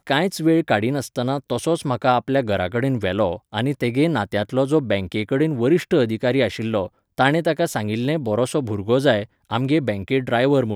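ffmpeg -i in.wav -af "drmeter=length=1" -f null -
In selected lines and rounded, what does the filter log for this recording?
Channel 1: DR: 13.1
Overall DR: 13.1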